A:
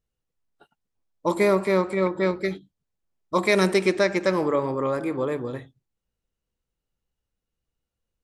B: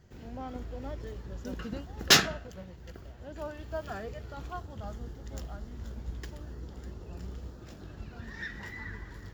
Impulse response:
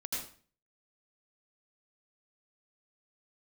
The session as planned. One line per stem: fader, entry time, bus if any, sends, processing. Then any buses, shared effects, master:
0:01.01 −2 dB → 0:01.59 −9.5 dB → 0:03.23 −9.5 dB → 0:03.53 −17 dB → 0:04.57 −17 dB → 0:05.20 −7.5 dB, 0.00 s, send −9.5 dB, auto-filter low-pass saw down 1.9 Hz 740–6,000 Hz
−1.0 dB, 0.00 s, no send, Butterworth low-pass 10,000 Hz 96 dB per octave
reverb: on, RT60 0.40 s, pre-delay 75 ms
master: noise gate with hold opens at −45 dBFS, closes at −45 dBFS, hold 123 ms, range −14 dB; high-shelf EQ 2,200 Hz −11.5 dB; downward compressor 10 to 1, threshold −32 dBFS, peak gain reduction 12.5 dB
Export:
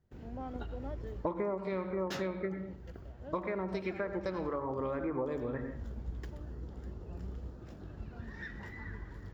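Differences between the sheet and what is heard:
stem A −2.0 dB → +8.0 dB
stem B: missing Butterworth low-pass 10,000 Hz 96 dB per octave

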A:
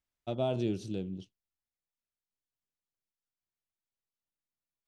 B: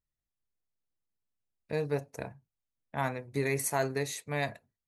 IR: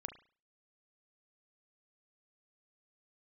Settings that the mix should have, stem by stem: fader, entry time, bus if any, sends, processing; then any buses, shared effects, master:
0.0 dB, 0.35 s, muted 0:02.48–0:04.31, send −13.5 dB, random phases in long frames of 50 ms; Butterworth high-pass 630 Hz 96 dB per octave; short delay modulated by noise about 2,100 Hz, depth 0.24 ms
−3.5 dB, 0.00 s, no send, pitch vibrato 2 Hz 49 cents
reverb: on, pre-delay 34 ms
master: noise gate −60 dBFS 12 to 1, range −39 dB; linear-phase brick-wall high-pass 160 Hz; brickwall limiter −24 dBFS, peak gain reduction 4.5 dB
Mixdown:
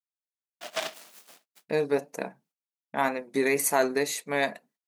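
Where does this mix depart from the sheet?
stem B −3.5 dB → +6.5 dB
master: missing brickwall limiter −24 dBFS, peak gain reduction 4.5 dB

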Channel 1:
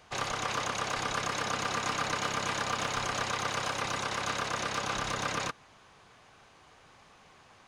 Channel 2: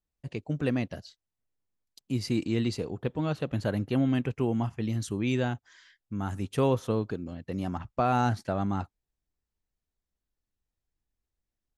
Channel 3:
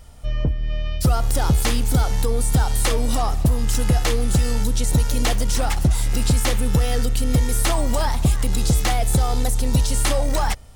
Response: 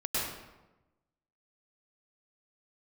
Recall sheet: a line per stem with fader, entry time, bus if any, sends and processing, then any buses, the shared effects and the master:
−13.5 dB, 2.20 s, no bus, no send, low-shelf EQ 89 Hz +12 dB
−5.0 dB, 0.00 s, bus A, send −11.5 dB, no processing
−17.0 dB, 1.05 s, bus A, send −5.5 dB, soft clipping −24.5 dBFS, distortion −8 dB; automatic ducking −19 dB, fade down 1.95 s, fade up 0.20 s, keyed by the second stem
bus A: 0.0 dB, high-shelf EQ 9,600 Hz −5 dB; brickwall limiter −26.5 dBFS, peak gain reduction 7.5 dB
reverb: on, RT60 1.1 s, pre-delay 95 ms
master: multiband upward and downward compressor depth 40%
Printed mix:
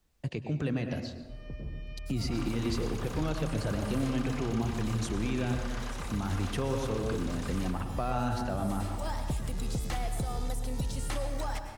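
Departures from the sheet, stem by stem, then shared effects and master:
stem 2 −5.0 dB → +3.0 dB
stem 3: missing soft clipping −24.5 dBFS, distortion −8 dB
reverb return −8.0 dB

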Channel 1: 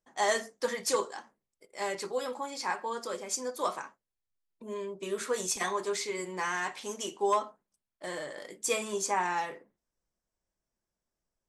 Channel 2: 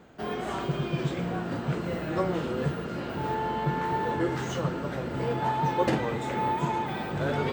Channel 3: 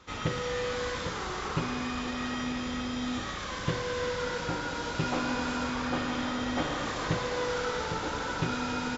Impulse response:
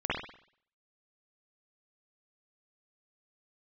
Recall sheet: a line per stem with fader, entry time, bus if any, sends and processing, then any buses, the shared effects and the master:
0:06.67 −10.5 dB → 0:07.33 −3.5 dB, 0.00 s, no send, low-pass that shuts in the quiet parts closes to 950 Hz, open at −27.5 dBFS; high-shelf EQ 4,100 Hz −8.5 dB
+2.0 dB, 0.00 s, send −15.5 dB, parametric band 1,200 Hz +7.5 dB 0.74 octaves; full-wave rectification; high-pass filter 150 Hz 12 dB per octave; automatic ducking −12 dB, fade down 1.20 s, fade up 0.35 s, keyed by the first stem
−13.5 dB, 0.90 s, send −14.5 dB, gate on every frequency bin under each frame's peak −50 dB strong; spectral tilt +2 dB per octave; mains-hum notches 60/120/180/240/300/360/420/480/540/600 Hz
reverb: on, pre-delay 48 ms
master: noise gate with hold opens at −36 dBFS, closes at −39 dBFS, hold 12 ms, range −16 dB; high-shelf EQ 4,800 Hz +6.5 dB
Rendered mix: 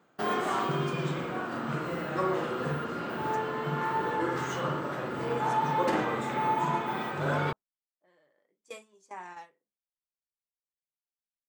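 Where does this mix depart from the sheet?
stem 1 −10.5 dB → −20.0 dB
stem 2: missing full-wave rectification
stem 3: muted

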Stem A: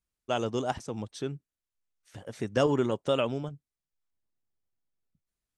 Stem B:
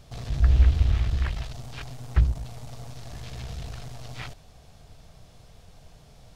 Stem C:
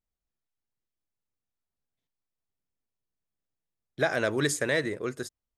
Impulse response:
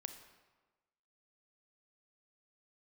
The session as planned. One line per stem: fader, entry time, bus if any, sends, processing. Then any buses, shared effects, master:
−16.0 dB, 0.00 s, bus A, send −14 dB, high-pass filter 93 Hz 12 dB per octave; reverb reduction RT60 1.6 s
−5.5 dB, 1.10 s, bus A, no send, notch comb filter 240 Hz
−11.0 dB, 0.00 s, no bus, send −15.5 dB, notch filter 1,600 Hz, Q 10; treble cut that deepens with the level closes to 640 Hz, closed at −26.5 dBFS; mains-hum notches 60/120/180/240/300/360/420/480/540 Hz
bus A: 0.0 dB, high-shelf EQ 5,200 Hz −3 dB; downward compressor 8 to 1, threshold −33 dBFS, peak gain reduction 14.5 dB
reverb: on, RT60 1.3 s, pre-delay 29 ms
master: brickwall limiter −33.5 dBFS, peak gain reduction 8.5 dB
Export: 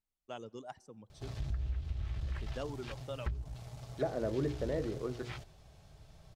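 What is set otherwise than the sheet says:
stem C −11.0 dB → −5.0 dB
master: missing brickwall limiter −33.5 dBFS, peak gain reduction 8.5 dB

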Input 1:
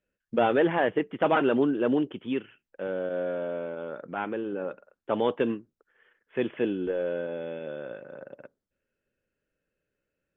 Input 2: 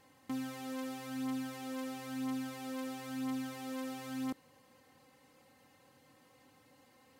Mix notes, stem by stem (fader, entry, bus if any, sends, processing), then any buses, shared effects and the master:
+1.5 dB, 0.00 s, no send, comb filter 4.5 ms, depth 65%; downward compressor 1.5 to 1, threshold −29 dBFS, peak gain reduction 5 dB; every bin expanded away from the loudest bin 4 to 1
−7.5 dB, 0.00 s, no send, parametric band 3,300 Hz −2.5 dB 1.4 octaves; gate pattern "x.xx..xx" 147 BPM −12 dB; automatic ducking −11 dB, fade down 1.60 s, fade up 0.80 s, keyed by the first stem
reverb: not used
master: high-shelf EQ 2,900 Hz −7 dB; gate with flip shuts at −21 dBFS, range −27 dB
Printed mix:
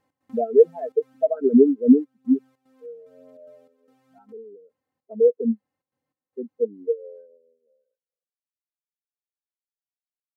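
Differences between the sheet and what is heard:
stem 1 +1.5 dB → +10.0 dB
master: missing gate with flip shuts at −21 dBFS, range −27 dB

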